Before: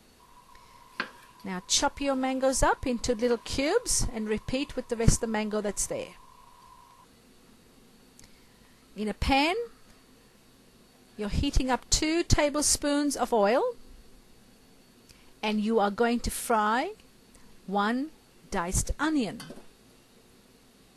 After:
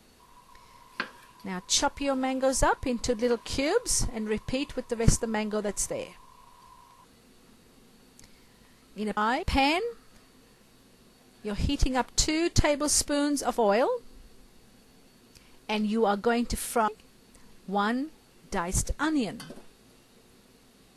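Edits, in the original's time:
16.62–16.88 s: move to 9.17 s

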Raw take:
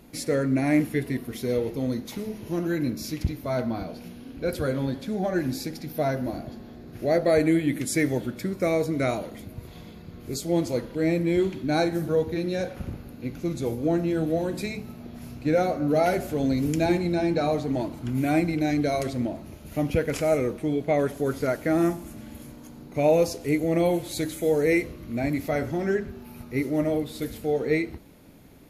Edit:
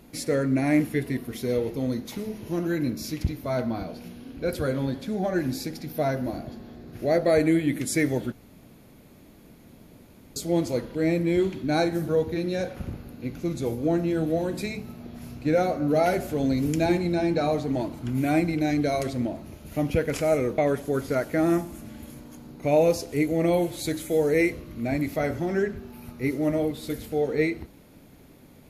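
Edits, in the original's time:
8.32–10.36 s: room tone
20.58–20.90 s: delete

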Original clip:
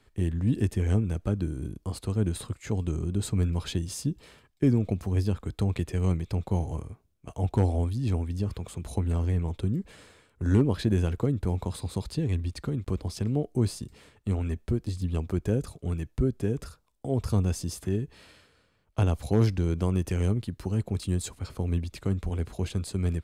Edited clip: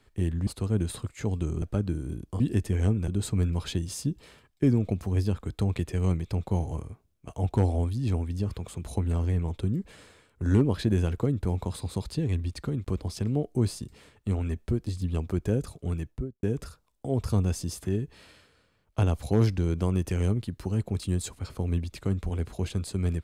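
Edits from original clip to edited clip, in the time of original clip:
0.47–1.15 s: swap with 1.93–3.08 s
15.97–16.43 s: studio fade out

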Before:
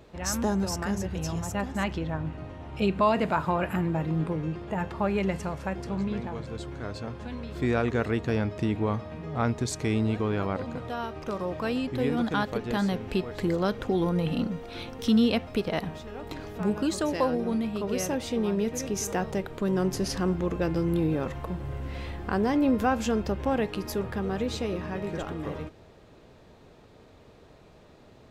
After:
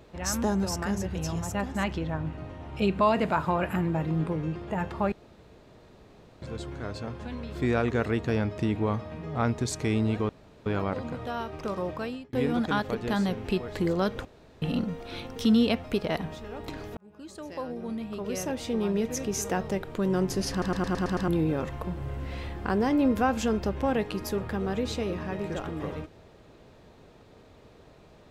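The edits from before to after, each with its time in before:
5.12–6.42 s: room tone
10.29 s: insert room tone 0.37 s
11.49–11.96 s: fade out
13.88–14.25 s: room tone
16.60–18.59 s: fade in
20.14 s: stutter in place 0.11 s, 7 plays

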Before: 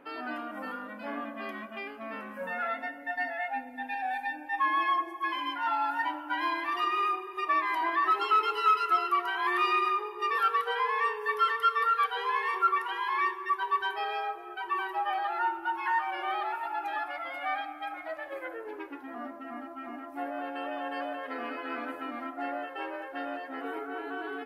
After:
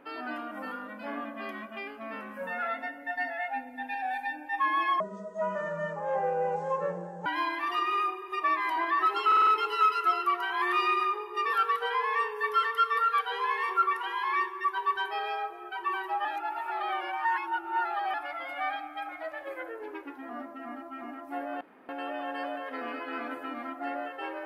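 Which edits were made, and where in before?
5.00–6.31 s: speed 58%
8.32 s: stutter 0.05 s, 5 plays
15.10–16.99 s: reverse
20.46 s: insert room tone 0.28 s

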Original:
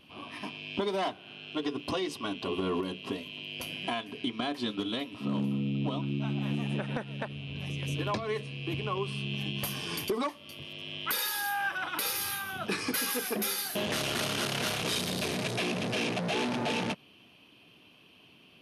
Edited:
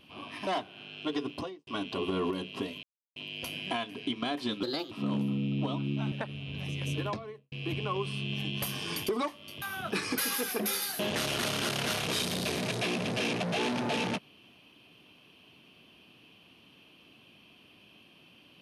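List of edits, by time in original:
0.47–0.97 s: delete
1.75–2.17 s: studio fade out
3.33 s: insert silence 0.33 s
4.80–5.14 s: speed 122%
6.35–7.13 s: delete
7.93–8.53 s: studio fade out
10.63–12.38 s: delete

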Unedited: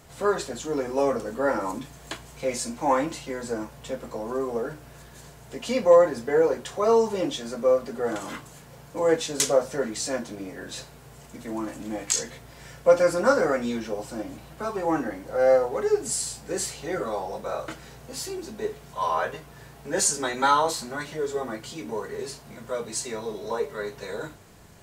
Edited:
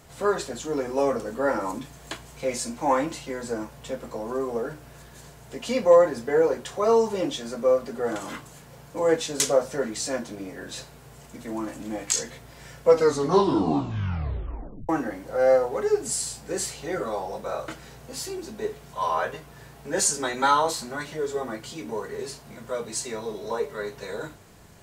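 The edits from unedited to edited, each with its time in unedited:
12.81 s: tape stop 2.08 s

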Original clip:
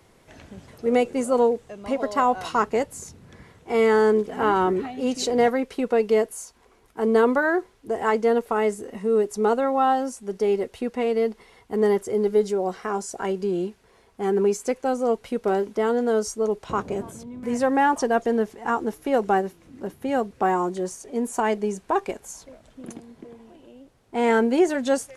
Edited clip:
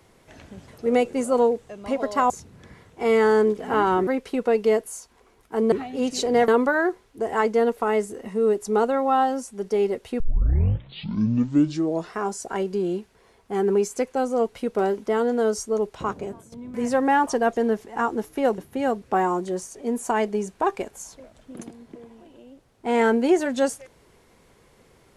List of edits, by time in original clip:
2.30–2.99 s: delete
4.76–5.52 s: move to 7.17 s
10.89 s: tape start 2.01 s
16.44–17.21 s: fade out equal-power, to -13 dB
19.27–19.87 s: delete

